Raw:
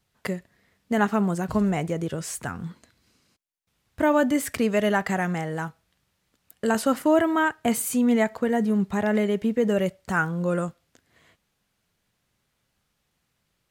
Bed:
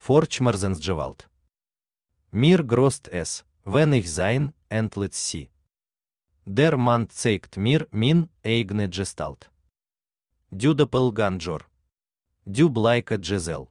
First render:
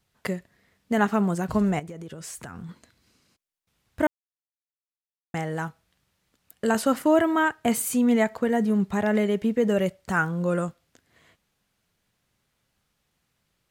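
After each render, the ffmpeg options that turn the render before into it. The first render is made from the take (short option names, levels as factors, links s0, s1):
-filter_complex "[0:a]asettb=1/sr,asplit=3[s0][s1][s2];[s0]atrim=end=1.794[s3];[s1]atrim=start=1.79:end=2.69,asetpts=PTS-STARTPTS,afade=t=in:d=0.004:c=qsin,afade=t=out:st=0.896:d=0.004:c=qsin,acompressor=threshold=0.02:ratio=16:attack=3.2:release=140:knee=1:detection=peak[s4];[s2]atrim=start=2.686[s5];[s3][s4]acrossfade=d=0.004:c1=hsin:c2=qsin[s6];[s6][s5]acrossfade=d=0.004:c1=qsin:c2=hsin,asplit=3[s7][s8][s9];[s7]atrim=end=4.07,asetpts=PTS-STARTPTS,afade=t=out:st=4.066:d=0.004:c=hsin[s10];[s8]atrim=start=4.07:end=5.34,asetpts=PTS-STARTPTS,volume=0[s11];[s9]atrim=start=5.34,asetpts=PTS-STARTPTS,afade=t=in:d=0.004:c=hsin[s12];[s10][s11][s12]concat=n=3:v=0:a=1"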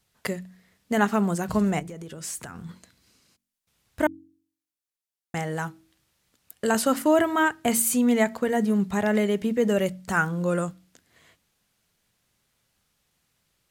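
-af "equalizer=f=11000:t=o:w=2.5:g=5.5,bandreject=f=46:t=h:w=4,bandreject=f=92:t=h:w=4,bandreject=f=138:t=h:w=4,bandreject=f=184:t=h:w=4,bandreject=f=230:t=h:w=4,bandreject=f=276:t=h:w=4,bandreject=f=322:t=h:w=4"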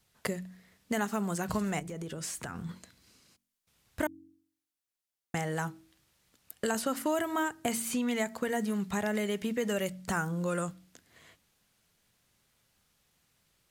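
-filter_complex "[0:a]acrossover=split=1000|4900[s0][s1][s2];[s0]acompressor=threshold=0.0282:ratio=4[s3];[s1]acompressor=threshold=0.0141:ratio=4[s4];[s2]acompressor=threshold=0.0112:ratio=4[s5];[s3][s4][s5]amix=inputs=3:normalize=0"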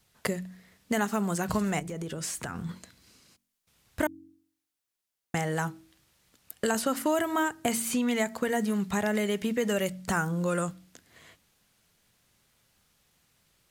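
-af "volume=1.5"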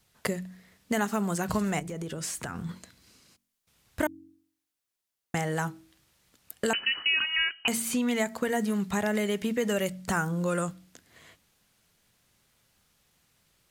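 -filter_complex "[0:a]asettb=1/sr,asplit=3[s0][s1][s2];[s0]atrim=end=6.734[s3];[s1]atrim=start=6.73:end=7.68,asetpts=PTS-STARTPTS,afade=t=in:d=0.004:c=qsin,afade=t=out:st=0.946:d=0.004:c=qsin,lowpass=f=2700:t=q:w=0.5098,lowpass=f=2700:t=q:w=0.6013,lowpass=f=2700:t=q:w=0.9,lowpass=f=2700:t=q:w=2.563,afreqshift=-3200[s4];[s2]atrim=start=7.676[s5];[s3][s4]acrossfade=d=0.004:c1=hsin:c2=qsin[s6];[s6][s5]acrossfade=d=0.004:c1=qsin:c2=hsin"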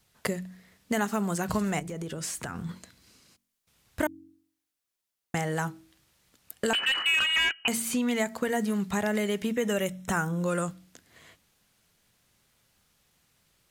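-filter_complex "[0:a]asplit=3[s0][s1][s2];[s0]afade=t=out:st=6.72:d=0.02[s3];[s1]asplit=2[s4][s5];[s5]highpass=f=720:p=1,volume=10,asoftclip=type=tanh:threshold=0.178[s6];[s4][s6]amix=inputs=2:normalize=0,lowpass=f=2100:p=1,volume=0.501,afade=t=in:st=6.72:d=0.02,afade=t=out:st=7.51:d=0.02[s7];[s2]afade=t=in:st=7.51:d=0.02[s8];[s3][s7][s8]amix=inputs=3:normalize=0,asettb=1/sr,asplit=3[s9][s10][s11];[s9]atrim=end=9.514[s12];[s10]atrim=start=9.51:end=10.44,asetpts=PTS-STARTPTS,afade=t=in:d=0.004:c=qsin,afade=t=out:st=0.926:d=0.004:c=qsin,asuperstop=centerf=4600:order=20:qfactor=5.7[s13];[s11]atrim=start=10.436[s14];[s12][s13]acrossfade=d=0.004:c1=hsin:c2=qsin[s15];[s15][s14]acrossfade=d=0.004:c1=qsin:c2=hsin"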